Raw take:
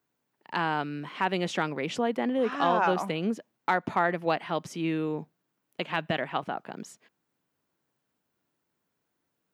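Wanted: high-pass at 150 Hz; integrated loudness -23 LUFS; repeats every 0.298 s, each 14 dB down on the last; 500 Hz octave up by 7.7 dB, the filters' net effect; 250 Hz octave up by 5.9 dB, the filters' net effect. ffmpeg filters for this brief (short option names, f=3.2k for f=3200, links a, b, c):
-af "highpass=150,equalizer=f=250:t=o:g=5.5,equalizer=f=500:t=o:g=8,aecho=1:1:298|596:0.2|0.0399,volume=1dB"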